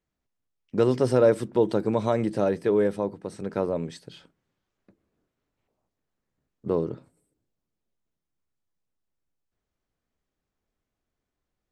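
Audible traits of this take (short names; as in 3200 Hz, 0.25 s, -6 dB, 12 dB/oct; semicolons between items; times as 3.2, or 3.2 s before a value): noise floor -85 dBFS; spectral tilt -6.0 dB/oct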